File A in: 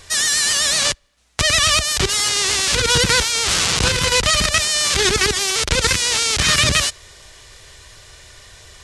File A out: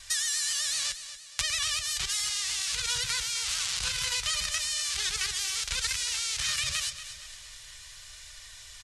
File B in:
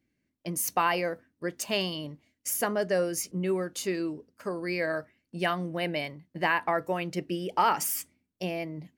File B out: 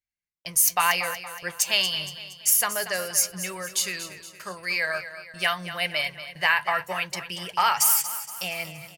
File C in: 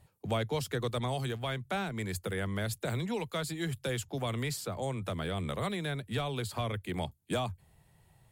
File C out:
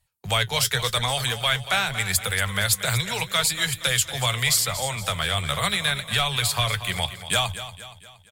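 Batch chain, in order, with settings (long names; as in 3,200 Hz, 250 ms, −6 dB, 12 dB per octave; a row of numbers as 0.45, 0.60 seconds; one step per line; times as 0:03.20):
noise gate with hold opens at −47 dBFS
guitar amp tone stack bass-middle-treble 10-0-10
downward compressor 5 to 1, threshold −25 dBFS
flanger 0.84 Hz, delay 3 ms, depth 5.6 ms, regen +60%
repeating echo 234 ms, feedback 48%, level −12.5 dB
normalise the peak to −6 dBFS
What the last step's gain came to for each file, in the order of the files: +2.5, +16.5, +24.5 decibels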